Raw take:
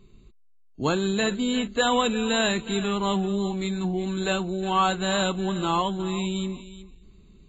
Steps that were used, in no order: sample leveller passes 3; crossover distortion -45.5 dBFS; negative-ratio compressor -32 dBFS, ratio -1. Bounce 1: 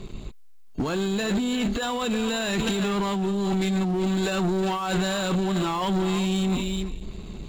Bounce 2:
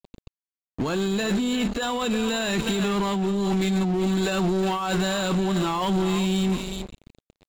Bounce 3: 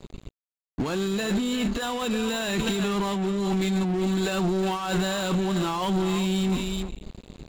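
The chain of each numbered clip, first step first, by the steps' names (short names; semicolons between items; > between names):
negative-ratio compressor > sample leveller > crossover distortion; crossover distortion > negative-ratio compressor > sample leveller; negative-ratio compressor > crossover distortion > sample leveller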